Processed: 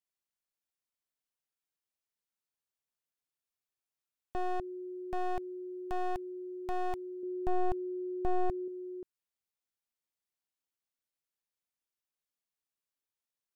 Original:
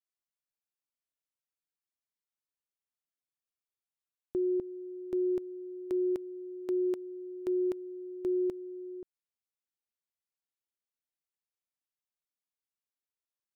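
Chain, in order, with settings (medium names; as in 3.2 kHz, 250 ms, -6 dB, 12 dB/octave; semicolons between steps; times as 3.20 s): one-sided wavefolder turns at -37.5 dBFS; 7.23–8.68 s: tilt shelf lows +6.5 dB, about 880 Hz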